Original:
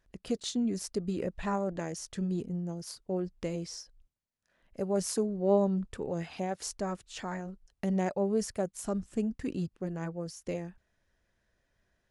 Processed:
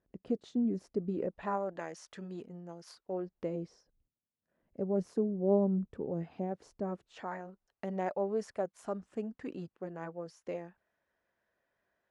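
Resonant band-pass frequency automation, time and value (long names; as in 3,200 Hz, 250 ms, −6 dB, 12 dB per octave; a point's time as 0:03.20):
resonant band-pass, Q 0.66
0:01.01 310 Hz
0:01.77 1,200 Hz
0:03.00 1,200 Hz
0:03.77 260 Hz
0:06.80 260 Hz
0:07.32 870 Hz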